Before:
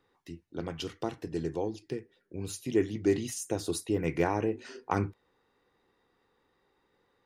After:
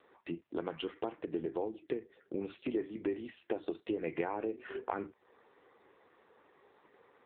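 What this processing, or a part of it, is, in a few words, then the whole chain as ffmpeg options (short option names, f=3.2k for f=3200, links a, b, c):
voicemail: -filter_complex "[0:a]asplit=3[a][b][c];[a]afade=t=out:st=1.45:d=0.02[d];[b]equalizer=f=13k:t=o:w=1.9:g=-6,afade=t=in:st=1.45:d=0.02,afade=t=out:st=2.8:d=0.02[e];[c]afade=t=in:st=2.8:d=0.02[f];[d][e][f]amix=inputs=3:normalize=0,highpass=310,lowpass=2.9k,acompressor=threshold=-45dB:ratio=6,volume=12.5dB" -ar 8000 -c:a libopencore_amrnb -b:a 5900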